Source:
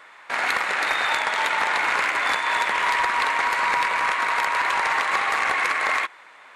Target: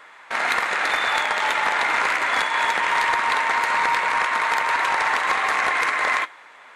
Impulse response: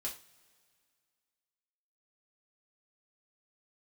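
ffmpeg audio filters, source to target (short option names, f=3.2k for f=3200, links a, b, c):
-filter_complex "[0:a]asetrate=42777,aresample=44100,asplit=2[a][b];[1:a]atrim=start_sample=2205[c];[b][c]afir=irnorm=-1:irlink=0,volume=-12.5dB[d];[a][d]amix=inputs=2:normalize=0"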